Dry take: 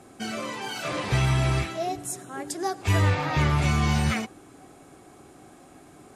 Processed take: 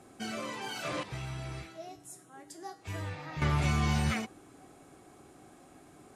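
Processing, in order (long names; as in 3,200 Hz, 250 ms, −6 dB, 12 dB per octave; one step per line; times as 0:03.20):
0:01.03–0:03.42: tuned comb filter 160 Hz, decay 0.36 s, harmonics all, mix 80%
level −5.5 dB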